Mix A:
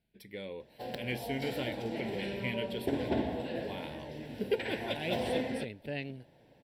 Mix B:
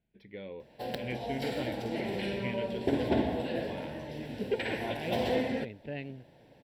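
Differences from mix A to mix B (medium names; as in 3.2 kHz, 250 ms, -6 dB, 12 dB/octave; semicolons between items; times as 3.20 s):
speech: add distance through air 290 m; background +3.5 dB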